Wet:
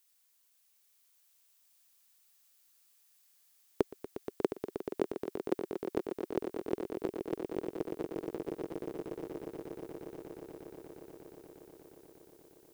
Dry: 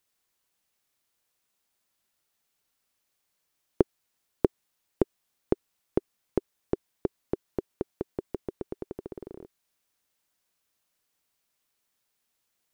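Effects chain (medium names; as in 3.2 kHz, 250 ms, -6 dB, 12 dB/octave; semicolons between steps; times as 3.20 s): 3.81–5.53 s: high-pass 170 Hz 24 dB/octave; tilt EQ +3 dB/octave; on a send: echo with a slow build-up 119 ms, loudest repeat 8, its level -10.5 dB; on the sum: trim -3 dB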